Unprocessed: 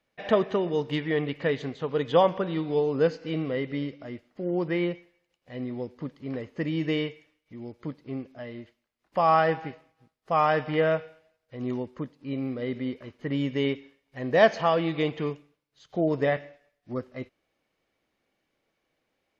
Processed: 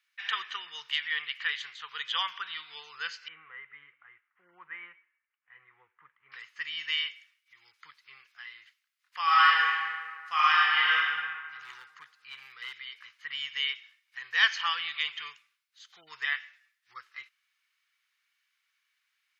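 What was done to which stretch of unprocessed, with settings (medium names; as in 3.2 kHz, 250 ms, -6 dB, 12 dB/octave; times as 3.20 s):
3.28–6.32 s: Gaussian low-pass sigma 5 samples
9.23–11.02 s: reverb throw, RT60 1.9 s, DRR -6 dB
11.58–12.73 s: hard clipper -25.5 dBFS
whole clip: inverse Chebyshev high-pass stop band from 660 Hz, stop band 40 dB; dynamic bell 3.1 kHz, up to +7 dB, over -58 dBFS, Q 7.4; trim +4 dB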